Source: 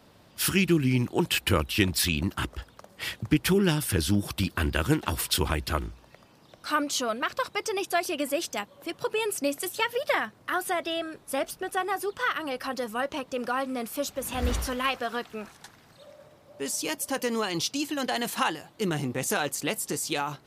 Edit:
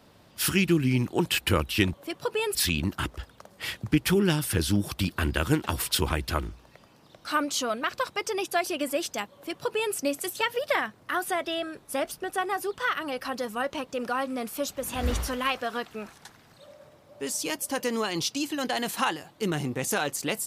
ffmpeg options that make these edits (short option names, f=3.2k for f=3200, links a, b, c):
-filter_complex "[0:a]asplit=3[a][b][c];[a]atrim=end=1.942[d];[b]atrim=start=8.728:end=9.342[e];[c]atrim=start=1.938[f];[d][e]acrossfade=d=0.004:c1=hsin:c2=hsin[g];[g][f]acrossfade=d=0.004:c1=hsin:c2=hsin"